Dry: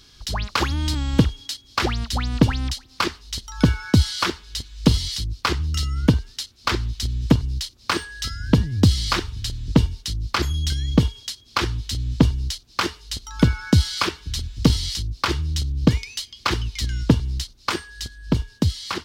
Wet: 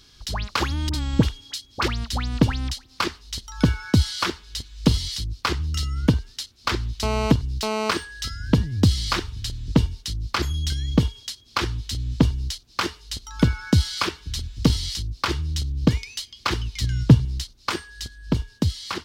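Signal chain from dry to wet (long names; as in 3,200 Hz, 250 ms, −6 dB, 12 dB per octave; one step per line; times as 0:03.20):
0:00.89–0:01.88: all-pass dispersion highs, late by 47 ms, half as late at 1,200 Hz
0:07.03–0:07.91: phone interference −23 dBFS
0:16.75–0:17.25: parametric band 130 Hz +10.5 dB
level −2 dB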